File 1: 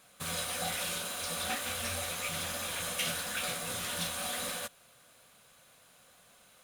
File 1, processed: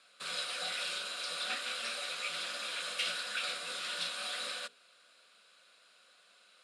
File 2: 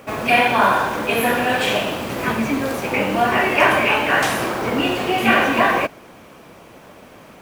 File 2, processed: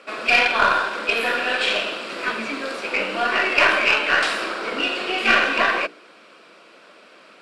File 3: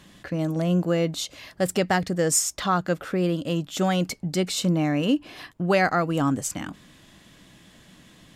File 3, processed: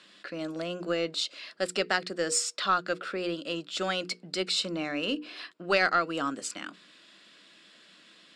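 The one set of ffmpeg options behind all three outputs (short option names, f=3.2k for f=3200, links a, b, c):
-af "highpass=f=240:w=0.5412,highpass=f=240:w=1.3066,equalizer=f=260:t=q:w=4:g=-6,equalizer=f=830:t=q:w=4:g=-7,equalizer=f=1.4k:t=q:w=4:g=7,equalizer=f=2.6k:t=q:w=4:g=5,equalizer=f=4k:t=q:w=4:g=3,equalizer=f=6.2k:t=q:w=4:g=-10,lowpass=f=8.7k:w=0.5412,lowpass=f=8.7k:w=1.3066,bandreject=f=60:t=h:w=6,bandreject=f=120:t=h:w=6,bandreject=f=180:t=h:w=6,bandreject=f=240:t=h:w=6,bandreject=f=300:t=h:w=6,bandreject=f=360:t=h:w=6,bandreject=f=420:t=h:w=6,bandreject=f=480:t=h:w=6,aeval=exprs='0.944*(cos(1*acos(clip(val(0)/0.944,-1,1)))-cos(1*PI/2))+0.133*(cos(2*acos(clip(val(0)/0.944,-1,1)))-cos(2*PI/2))+0.0211*(cos(7*acos(clip(val(0)/0.944,-1,1)))-cos(7*PI/2))':c=same,equalizer=f=4.9k:t=o:w=0.92:g=7.5,volume=-3.5dB"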